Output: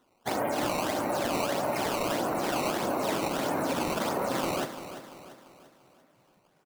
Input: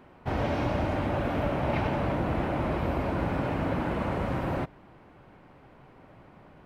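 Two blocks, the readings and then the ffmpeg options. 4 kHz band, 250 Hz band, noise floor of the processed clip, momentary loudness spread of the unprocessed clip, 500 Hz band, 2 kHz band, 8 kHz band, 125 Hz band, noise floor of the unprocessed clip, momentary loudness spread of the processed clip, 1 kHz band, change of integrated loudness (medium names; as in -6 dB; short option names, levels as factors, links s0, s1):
+9.0 dB, -2.0 dB, -67 dBFS, 3 LU, +1.0 dB, +1.0 dB, no reading, -11.0 dB, -54 dBFS, 7 LU, +2.0 dB, 0.0 dB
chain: -filter_complex "[0:a]afftdn=nr=17:nf=-37,highpass=220,lowshelf=f=340:g=-7,acontrast=49,alimiter=limit=0.0891:level=0:latency=1:release=78,acrusher=samples=15:mix=1:aa=0.000001:lfo=1:lforange=24:lforate=1.6,asplit=2[s0][s1];[s1]adelay=45,volume=0.224[s2];[s0][s2]amix=inputs=2:normalize=0,asplit=2[s3][s4];[s4]aecho=0:1:343|686|1029|1372|1715:0.266|0.122|0.0563|0.0259|0.0119[s5];[s3][s5]amix=inputs=2:normalize=0"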